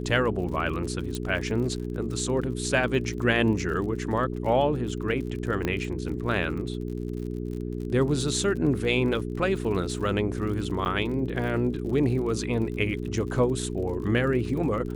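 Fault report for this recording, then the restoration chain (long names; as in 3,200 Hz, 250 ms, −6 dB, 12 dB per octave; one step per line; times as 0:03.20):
surface crackle 50 per second −35 dBFS
mains hum 60 Hz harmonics 7 −32 dBFS
0:01.15: click −17 dBFS
0:05.65: click −14 dBFS
0:10.85–0:10.86: drop-out 8.7 ms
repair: click removal
hum removal 60 Hz, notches 7
repair the gap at 0:10.85, 8.7 ms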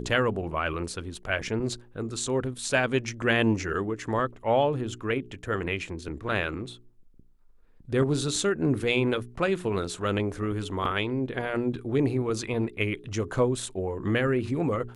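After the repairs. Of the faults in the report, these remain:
0:01.15: click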